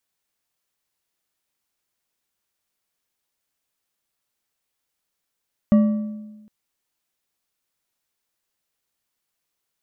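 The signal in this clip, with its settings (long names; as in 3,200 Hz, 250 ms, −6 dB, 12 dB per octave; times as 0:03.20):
struck metal bar, length 0.76 s, lowest mode 213 Hz, decay 1.21 s, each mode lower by 11.5 dB, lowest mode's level −9.5 dB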